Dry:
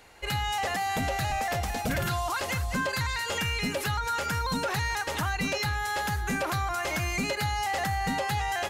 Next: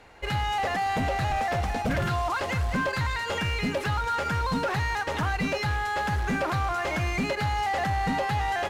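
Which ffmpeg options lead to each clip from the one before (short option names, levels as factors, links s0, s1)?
-af "acrusher=bits=2:mode=log:mix=0:aa=0.000001,aemphasis=mode=reproduction:type=75fm,volume=1.33"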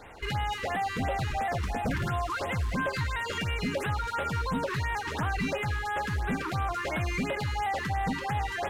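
-af "alimiter=level_in=1.68:limit=0.0631:level=0:latency=1:release=27,volume=0.596,afftfilt=real='re*(1-between(b*sr/1024,590*pow(5700/590,0.5+0.5*sin(2*PI*2.9*pts/sr))/1.41,590*pow(5700/590,0.5+0.5*sin(2*PI*2.9*pts/sr))*1.41))':imag='im*(1-between(b*sr/1024,590*pow(5700/590,0.5+0.5*sin(2*PI*2.9*pts/sr))/1.41,590*pow(5700/590,0.5+0.5*sin(2*PI*2.9*pts/sr))*1.41))':win_size=1024:overlap=0.75,volume=1.68"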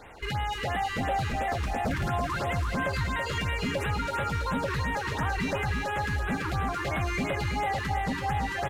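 -af "aecho=1:1:330|660|990|1320:0.531|0.181|0.0614|0.0209"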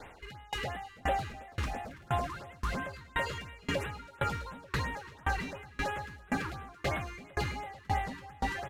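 -filter_complex "[0:a]acrossover=split=380|2000[s0][s1][s2];[s0]asoftclip=type=hard:threshold=0.0299[s3];[s3][s1][s2]amix=inputs=3:normalize=0,aeval=exprs='val(0)*pow(10,-29*if(lt(mod(1.9*n/s,1),2*abs(1.9)/1000),1-mod(1.9*n/s,1)/(2*abs(1.9)/1000),(mod(1.9*n/s,1)-2*abs(1.9)/1000)/(1-2*abs(1.9)/1000))/20)':c=same,volume=1.26"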